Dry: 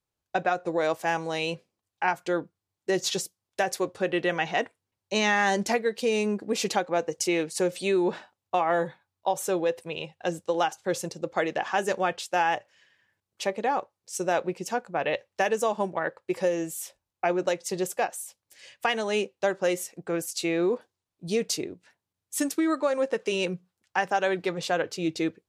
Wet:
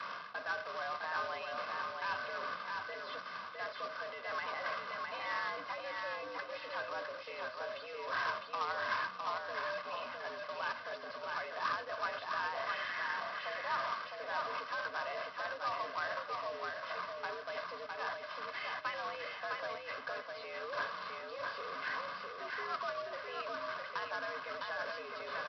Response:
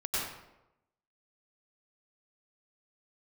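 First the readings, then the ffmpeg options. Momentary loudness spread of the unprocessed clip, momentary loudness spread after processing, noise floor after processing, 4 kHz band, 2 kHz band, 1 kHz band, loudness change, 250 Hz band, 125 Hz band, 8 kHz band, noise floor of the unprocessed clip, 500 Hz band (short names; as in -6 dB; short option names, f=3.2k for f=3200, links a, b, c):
7 LU, 6 LU, -48 dBFS, -10.0 dB, -6.5 dB, -8.5 dB, -11.5 dB, -28.0 dB, -23.0 dB, under -25 dB, under -85 dBFS, -16.0 dB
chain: -af "aeval=exprs='val(0)+0.5*0.0141*sgn(val(0))':c=same,aecho=1:1:2:0.76,areverse,acompressor=threshold=-31dB:ratio=8,areverse,alimiter=level_in=9.5dB:limit=-24dB:level=0:latency=1:release=17,volume=-9.5dB,bandpass=f=1.2k:t=q:w=4.1:csg=0,aeval=exprs='0.0141*(cos(1*acos(clip(val(0)/0.0141,-1,1)))-cos(1*PI/2))+0.000224*(cos(2*acos(clip(val(0)/0.0141,-1,1)))-cos(2*PI/2))+0.000251*(cos(3*acos(clip(val(0)/0.0141,-1,1)))-cos(3*PI/2))+0.000224*(cos(5*acos(clip(val(0)/0.0141,-1,1)))-cos(5*PI/2))':c=same,aresample=11025,acrusher=bits=2:mode=log:mix=0:aa=0.000001,aresample=44100,aecho=1:1:658|1316|1974|2632:0.668|0.194|0.0562|0.0163,afreqshift=92,volume=13dB"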